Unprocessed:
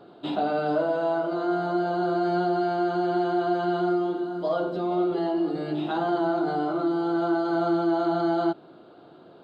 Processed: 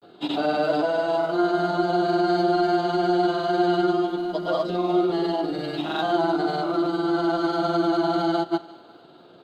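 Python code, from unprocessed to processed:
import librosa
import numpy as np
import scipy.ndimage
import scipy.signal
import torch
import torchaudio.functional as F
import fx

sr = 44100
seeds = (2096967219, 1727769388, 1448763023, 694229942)

p1 = fx.high_shelf(x, sr, hz=2600.0, db=11.5)
p2 = fx.doubler(p1, sr, ms=17.0, db=-13.5)
p3 = fx.echo_thinned(p2, sr, ms=169, feedback_pct=62, hz=420.0, wet_db=-18.0)
p4 = np.sign(p3) * np.maximum(np.abs(p3) - 10.0 ** (-37.5 / 20.0), 0.0)
p5 = p3 + (p4 * 10.0 ** (-8.0 / 20.0))
y = fx.granulator(p5, sr, seeds[0], grain_ms=100.0, per_s=20.0, spray_ms=100.0, spread_st=0)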